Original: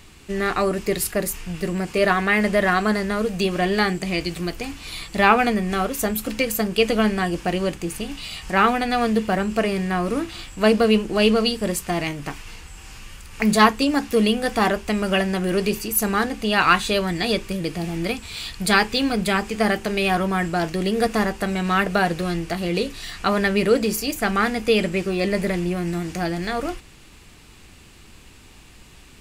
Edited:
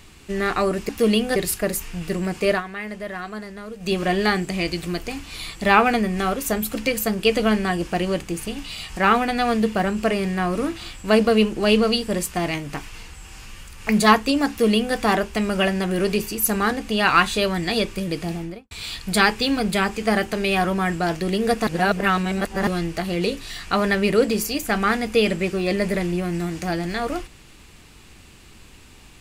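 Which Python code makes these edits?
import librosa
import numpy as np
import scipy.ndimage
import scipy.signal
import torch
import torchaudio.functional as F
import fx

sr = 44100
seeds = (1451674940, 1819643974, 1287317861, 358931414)

y = fx.studio_fade_out(x, sr, start_s=17.79, length_s=0.45)
y = fx.edit(y, sr, fx.fade_down_up(start_s=2.02, length_s=1.44, db=-12.5, fade_s=0.14),
    fx.duplicate(start_s=14.02, length_s=0.47, to_s=0.89),
    fx.reverse_span(start_s=21.2, length_s=1.0), tone=tone)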